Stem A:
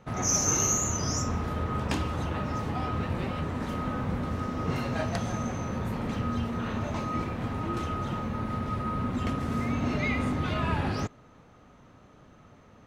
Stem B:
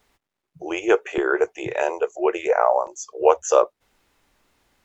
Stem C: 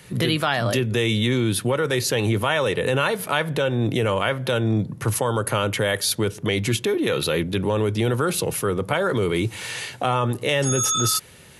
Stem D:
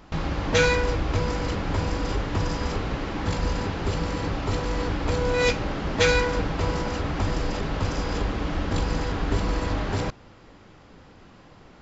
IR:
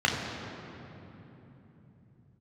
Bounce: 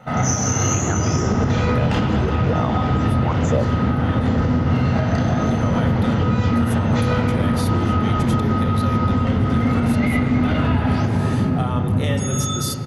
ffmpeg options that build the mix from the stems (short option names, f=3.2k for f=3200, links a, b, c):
-filter_complex "[0:a]volume=2.5dB,asplit=2[a][b];[b]volume=-3dB[c];[1:a]asplit=2[d][e];[e]afreqshift=1.7[f];[d][f]amix=inputs=2:normalize=1,volume=1.5dB,asplit=2[g][h];[2:a]adelay=1550,volume=-5dB,asplit=3[i][j][k];[i]atrim=end=4.29,asetpts=PTS-STARTPTS,afade=t=out:st=4.286:d=0.004:c=hsin[l];[j]atrim=start=4.29:end=5.21,asetpts=PTS-STARTPTS,volume=0[m];[k]atrim=start=5.21,asetpts=PTS-STARTPTS,afade=t=in:d=0.004:c=hsin[n];[l][m][n]concat=n=3:v=0:a=1,asplit=2[o][p];[p]volume=-17.5dB[q];[3:a]flanger=delay=17:depth=7.8:speed=0.74,adelay=950,volume=-1dB,asplit=2[r][s];[s]volume=-11dB[t];[h]apad=whole_len=579727[u];[o][u]sidechaincompress=threshold=-33dB:ratio=3:attack=16:release=544[v];[4:a]atrim=start_sample=2205[w];[c][q][t]amix=inputs=3:normalize=0[x];[x][w]afir=irnorm=-1:irlink=0[y];[a][g][v][r][y]amix=inputs=5:normalize=0,alimiter=limit=-9.5dB:level=0:latency=1:release=286"